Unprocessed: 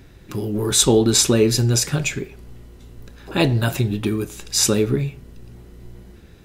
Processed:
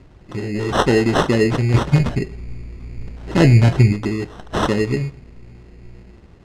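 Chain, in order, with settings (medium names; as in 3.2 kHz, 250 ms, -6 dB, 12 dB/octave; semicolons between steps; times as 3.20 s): 1.74–3.93 s: bass shelf 300 Hz +10.5 dB; sample-and-hold 19×; distance through air 81 m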